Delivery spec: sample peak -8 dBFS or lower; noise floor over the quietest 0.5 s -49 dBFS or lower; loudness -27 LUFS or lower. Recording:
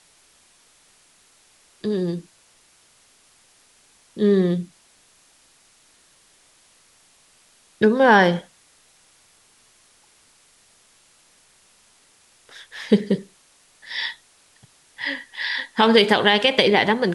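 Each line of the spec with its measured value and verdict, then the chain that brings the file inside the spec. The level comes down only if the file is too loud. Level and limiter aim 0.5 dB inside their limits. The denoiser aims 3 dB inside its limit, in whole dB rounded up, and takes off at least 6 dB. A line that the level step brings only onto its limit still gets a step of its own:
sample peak -4.0 dBFS: fail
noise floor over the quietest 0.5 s -57 dBFS: pass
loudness -19.5 LUFS: fail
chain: trim -8 dB

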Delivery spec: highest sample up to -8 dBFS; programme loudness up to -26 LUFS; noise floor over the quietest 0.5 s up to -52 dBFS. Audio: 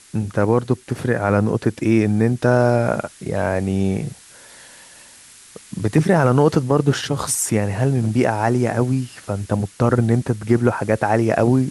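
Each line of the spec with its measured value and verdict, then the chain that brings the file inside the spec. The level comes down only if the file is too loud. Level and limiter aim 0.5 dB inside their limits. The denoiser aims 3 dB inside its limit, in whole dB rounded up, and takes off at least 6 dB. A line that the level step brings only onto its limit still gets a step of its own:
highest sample -4.0 dBFS: fail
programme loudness -19.0 LUFS: fail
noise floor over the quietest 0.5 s -45 dBFS: fail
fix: trim -7.5 dB

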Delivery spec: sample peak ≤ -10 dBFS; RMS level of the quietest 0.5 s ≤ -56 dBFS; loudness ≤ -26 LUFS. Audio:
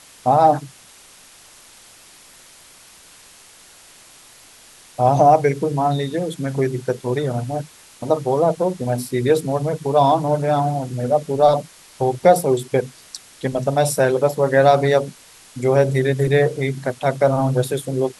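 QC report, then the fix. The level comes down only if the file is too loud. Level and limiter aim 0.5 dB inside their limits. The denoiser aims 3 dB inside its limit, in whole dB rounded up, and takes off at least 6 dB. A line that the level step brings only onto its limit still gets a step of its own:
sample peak -1.5 dBFS: fail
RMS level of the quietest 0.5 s -47 dBFS: fail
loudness -19.0 LUFS: fail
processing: noise reduction 6 dB, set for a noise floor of -47 dBFS; trim -7.5 dB; peak limiter -10.5 dBFS

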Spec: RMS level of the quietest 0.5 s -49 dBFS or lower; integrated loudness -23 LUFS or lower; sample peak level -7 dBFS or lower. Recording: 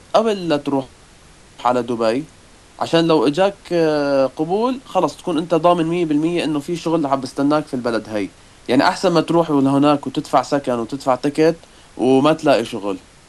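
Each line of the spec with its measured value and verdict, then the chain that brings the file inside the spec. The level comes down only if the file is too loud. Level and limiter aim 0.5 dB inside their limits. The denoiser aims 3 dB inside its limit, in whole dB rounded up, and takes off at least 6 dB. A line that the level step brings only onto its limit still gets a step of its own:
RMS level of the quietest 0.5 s -46 dBFS: fail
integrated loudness -18.0 LUFS: fail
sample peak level -2.0 dBFS: fail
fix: trim -5.5 dB

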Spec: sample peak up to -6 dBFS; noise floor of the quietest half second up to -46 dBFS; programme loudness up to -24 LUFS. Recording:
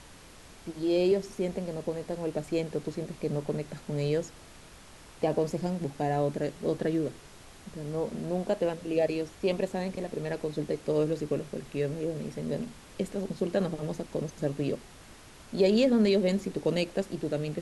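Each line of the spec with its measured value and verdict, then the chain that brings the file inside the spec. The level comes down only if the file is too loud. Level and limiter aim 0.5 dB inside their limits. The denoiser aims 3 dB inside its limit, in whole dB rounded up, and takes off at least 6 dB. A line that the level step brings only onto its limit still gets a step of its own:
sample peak -13.0 dBFS: pass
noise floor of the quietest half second -51 dBFS: pass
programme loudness -30.5 LUFS: pass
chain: none needed

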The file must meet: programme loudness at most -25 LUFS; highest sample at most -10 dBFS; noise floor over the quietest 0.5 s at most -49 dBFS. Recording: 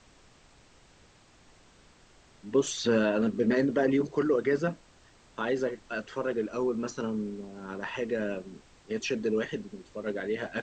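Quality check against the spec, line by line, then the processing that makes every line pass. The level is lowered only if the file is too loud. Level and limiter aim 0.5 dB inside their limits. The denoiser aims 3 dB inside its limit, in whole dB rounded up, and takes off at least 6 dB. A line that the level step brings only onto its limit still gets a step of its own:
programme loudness -30.0 LUFS: pass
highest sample -14.0 dBFS: pass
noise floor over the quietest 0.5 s -59 dBFS: pass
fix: none needed

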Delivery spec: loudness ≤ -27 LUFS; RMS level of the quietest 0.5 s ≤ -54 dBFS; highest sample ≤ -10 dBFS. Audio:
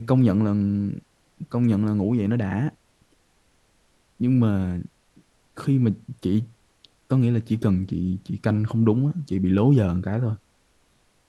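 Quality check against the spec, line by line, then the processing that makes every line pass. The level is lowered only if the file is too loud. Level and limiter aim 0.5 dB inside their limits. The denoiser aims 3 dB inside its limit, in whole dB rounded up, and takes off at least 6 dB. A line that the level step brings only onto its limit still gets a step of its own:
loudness -23.0 LUFS: fail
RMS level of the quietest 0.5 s -63 dBFS: pass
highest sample -6.0 dBFS: fail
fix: trim -4.5 dB

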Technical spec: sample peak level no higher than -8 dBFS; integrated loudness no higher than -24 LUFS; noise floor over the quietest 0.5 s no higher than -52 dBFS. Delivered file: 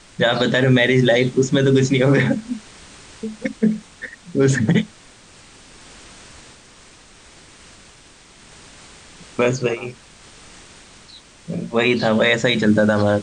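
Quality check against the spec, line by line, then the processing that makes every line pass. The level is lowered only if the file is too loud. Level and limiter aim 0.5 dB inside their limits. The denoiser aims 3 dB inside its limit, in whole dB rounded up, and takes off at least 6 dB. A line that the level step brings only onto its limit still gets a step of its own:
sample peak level -5.5 dBFS: fail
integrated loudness -18.0 LUFS: fail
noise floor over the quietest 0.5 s -47 dBFS: fail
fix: trim -6.5 dB

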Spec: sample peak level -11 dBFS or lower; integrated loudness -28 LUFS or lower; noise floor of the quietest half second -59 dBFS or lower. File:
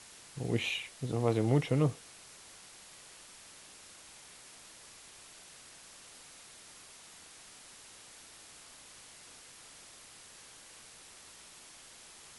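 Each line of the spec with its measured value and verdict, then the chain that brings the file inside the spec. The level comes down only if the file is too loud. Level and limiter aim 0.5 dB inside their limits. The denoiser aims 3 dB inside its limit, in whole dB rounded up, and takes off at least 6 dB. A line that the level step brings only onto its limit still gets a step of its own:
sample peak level -15.0 dBFS: pass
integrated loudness -32.0 LUFS: pass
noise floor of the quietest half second -54 dBFS: fail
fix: noise reduction 8 dB, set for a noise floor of -54 dBFS

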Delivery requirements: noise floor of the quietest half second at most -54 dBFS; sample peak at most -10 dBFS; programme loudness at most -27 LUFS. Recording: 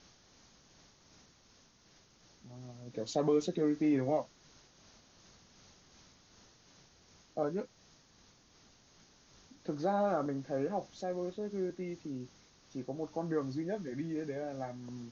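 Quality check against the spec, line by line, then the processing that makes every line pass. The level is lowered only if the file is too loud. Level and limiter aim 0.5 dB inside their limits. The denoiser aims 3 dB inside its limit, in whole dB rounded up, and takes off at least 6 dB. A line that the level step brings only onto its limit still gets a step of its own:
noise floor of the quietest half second -65 dBFS: pass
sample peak -19.0 dBFS: pass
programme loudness -36.0 LUFS: pass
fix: none needed

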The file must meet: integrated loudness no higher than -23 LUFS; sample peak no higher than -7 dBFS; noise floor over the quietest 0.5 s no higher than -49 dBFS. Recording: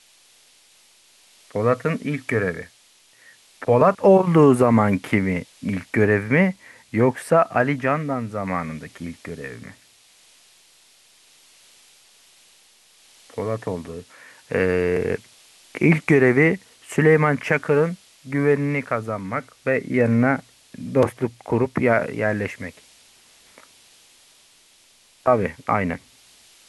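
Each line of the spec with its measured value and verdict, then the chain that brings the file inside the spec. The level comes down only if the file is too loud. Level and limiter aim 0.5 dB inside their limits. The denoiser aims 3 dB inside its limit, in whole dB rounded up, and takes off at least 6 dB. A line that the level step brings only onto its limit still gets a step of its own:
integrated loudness -20.5 LUFS: fail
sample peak -5.0 dBFS: fail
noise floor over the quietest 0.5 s -55 dBFS: pass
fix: trim -3 dB

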